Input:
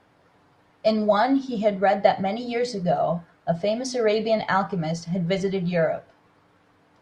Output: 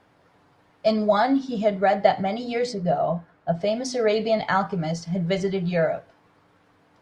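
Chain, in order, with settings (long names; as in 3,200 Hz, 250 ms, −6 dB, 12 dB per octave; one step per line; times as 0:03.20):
0:02.73–0:03.61: high-shelf EQ 3,400 Hz −9.5 dB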